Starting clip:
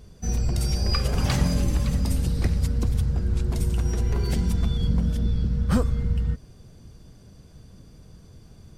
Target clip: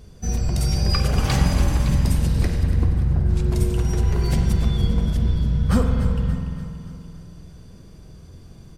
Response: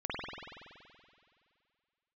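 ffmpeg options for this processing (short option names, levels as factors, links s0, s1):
-filter_complex "[0:a]asettb=1/sr,asplit=3[s0][s1][s2];[s0]atrim=end=2.634[s3];[s1]atrim=start=2.63:end=3.29,asetpts=PTS-STARTPTS,afade=t=in:d=0.004:c=qsin,afade=t=out:st=0.656:d=0.004:c=qsin,lowpass=1600[s4];[s2]atrim=start=3.286[s5];[s3][s4]acrossfade=d=0.004:c1=hsin:c2=qsin[s6];[s6][s5]acrossfade=d=0.004:c1=qsin:c2=hsin,aecho=1:1:288|576|864|1152|1440:0.237|0.121|0.0617|0.0315|0.016,asplit=2[s7][s8];[1:a]atrim=start_sample=2205[s9];[s8][s9]afir=irnorm=-1:irlink=0,volume=0.473[s10];[s7][s10]amix=inputs=2:normalize=0"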